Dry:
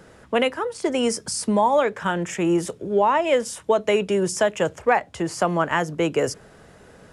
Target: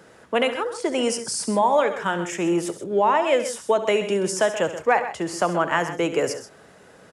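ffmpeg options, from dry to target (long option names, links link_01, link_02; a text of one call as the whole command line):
ffmpeg -i in.wav -af "highpass=frequency=230:poles=1,aecho=1:1:69|129|155:0.211|0.251|0.1" out.wav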